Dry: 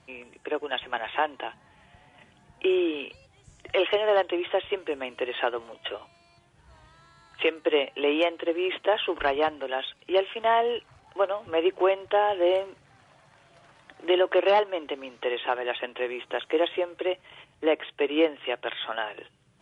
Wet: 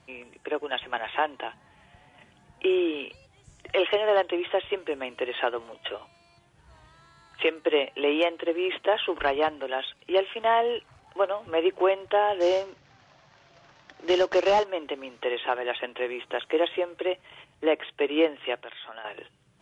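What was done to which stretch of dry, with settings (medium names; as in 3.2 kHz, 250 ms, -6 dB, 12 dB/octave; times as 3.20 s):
12.40–14.65 s: CVSD coder 32 kbps
18.56–19.05 s: compression 2:1, threshold -45 dBFS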